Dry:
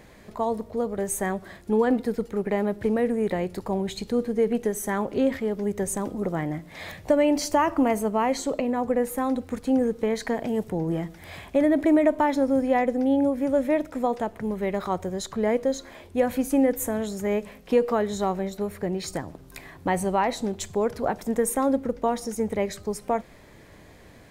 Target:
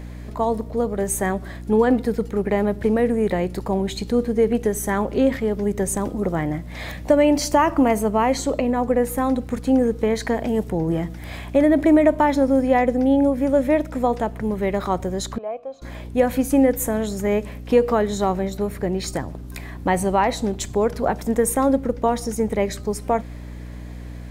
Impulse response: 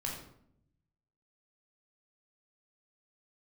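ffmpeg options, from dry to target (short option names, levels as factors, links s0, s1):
-filter_complex "[0:a]aeval=exprs='val(0)+0.0126*(sin(2*PI*60*n/s)+sin(2*PI*2*60*n/s)/2+sin(2*PI*3*60*n/s)/3+sin(2*PI*4*60*n/s)/4+sin(2*PI*5*60*n/s)/5)':c=same,asettb=1/sr,asplit=3[s0][s1][s2];[s0]atrim=end=15.384[s3];[s1]atrim=start=15.38:end=15.82,asetpts=PTS-STARTPTS,afade=t=in:d=0.004:c=qsin,afade=t=out:st=0.436:d=0.004:c=qsin,asplit=3[s4][s5][s6];[s4]bandpass=f=730:t=q:w=8,volume=1[s7];[s5]bandpass=f=1090:t=q:w=8,volume=0.501[s8];[s6]bandpass=f=2440:t=q:w=8,volume=0.355[s9];[s7][s8][s9]amix=inputs=3:normalize=0[s10];[s2]atrim=start=15.816[s11];[s3][s10]acrossfade=d=0.004:c1=hsin:c2=qsin[s12];[s12][s11]acrossfade=d=0.004:c1=qsin:c2=hsin,volume=1.68"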